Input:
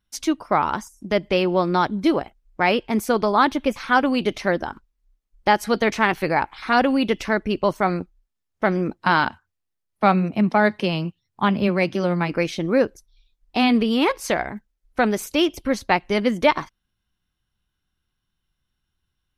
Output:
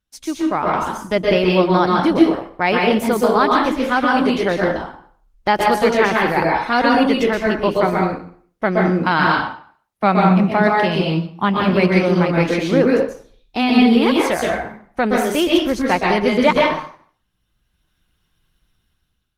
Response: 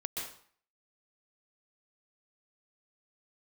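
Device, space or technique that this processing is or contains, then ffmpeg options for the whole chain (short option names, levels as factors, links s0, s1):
speakerphone in a meeting room: -filter_complex "[1:a]atrim=start_sample=2205[s0];[0:a][s0]afir=irnorm=-1:irlink=0,dynaudnorm=f=320:g=5:m=4.47,volume=0.891" -ar 48000 -c:a libopus -b:a 20k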